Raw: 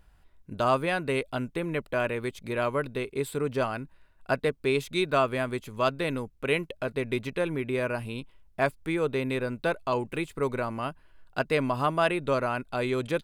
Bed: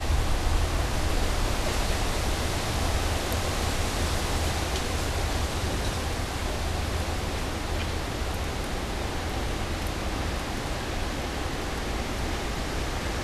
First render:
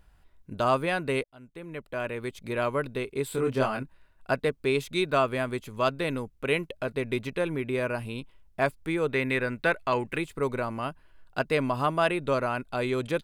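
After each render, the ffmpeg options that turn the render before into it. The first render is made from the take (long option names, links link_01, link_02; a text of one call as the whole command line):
ffmpeg -i in.wav -filter_complex "[0:a]asettb=1/sr,asplit=3[link_01][link_02][link_03];[link_01]atrim=end=3.284[link_04];[link_02]atrim=start=3.28:end=3.83,asetpts=PTS-STARTPTS,afade=type=in:duration=0.004:curve=qsin,afade=type=out:start_time=0.546:duration=0.004:curve=qsin,asplit=2[link_05][link_06];[link_06]adelay=23,volume=-2.5dB[link_07];[link_05][link_07]amix=inputs=2:normalize=0,atrim=end_sample=24255[link_08];[link_03]atrim=start=3.826[link_09];[link_04][link_08]acrossfade=duration=0.004:curve1=hsin:curve2=qsin[link_10];[link_10][link_09]acrossfade=duration=0.004:curve1=qsin:curve2=hsin,asettb=1/sr,asplit=3[link_11][link_12][link_13];[link_11]atrim=end=9.094[link_14];[link_12]atrim=start=9.09:end=10.18,asetpts=PTS-STARTPTS,afade=type=in:duration=0.004:curve=qsin,afade=type=out:start_time=1.086:duration=0.004:curve=qsin,equalizer=frequency=1900:width_type=o:width=0.9:gain=10[link_15];[link_13]atrim=start=10.176[link_16];[link_14][link_15]acrossfade=duration=0.004:curve1=hsin:curve2=qsin[link_17];[link_17][link_16]acrossfade=duration=0.004:curve1=qsin:curve2=hsin,asplit=2[link_18][link_19];[link_18]atrim=end=1.24,asetpts=PTS-STARTPTS,afade=type=out:start_time=1.236:duration=0.004:curve=hsin[link_20];[link_19]atrim=start=1.24,asetpts=PTS-STARTPTS,afade=type=in:duration=1.29[link_21];[link_20][link_21]concat=n=2:v=0:a=1" out.wav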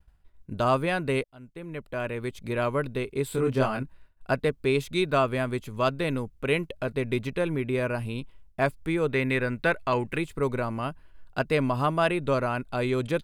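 ffmpeg -i in.wav -af "agate=range=-33dB:threshold=-51dB:ratio=3:detection=peak,lowshelf=frequency=200:gain=6.5" out.wav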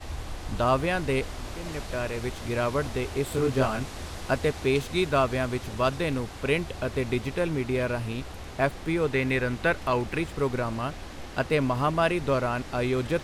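ffmpeg -i in.wav -i bed.wav -filter_complex "[1:a]volume=-10.5dB[link_01];[0:a][link_01]amix=inputs=2:normalize=0" out.wav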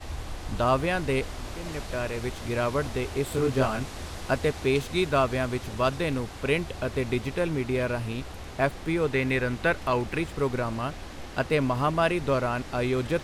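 ffmpeg -i in.wav -af anull out.wav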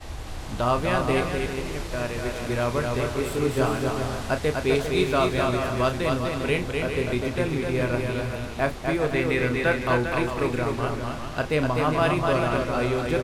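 ffmpeg -i in.wav -filter_complex "[0:a]asplit=2[link_01][link_02];[link_02]adelay=33,volume=-9.5dB[link_03];[link_01][link_03]amix=inputs=2:normalize=0,aecho=1:1:250|400|490|544|576.4:0.631|0.398|0.251|0.158|0.1" out.wav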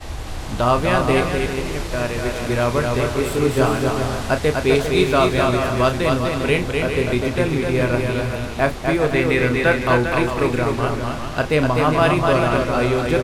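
ffmpeg -i in.wav -af "volume=6dB" out.wav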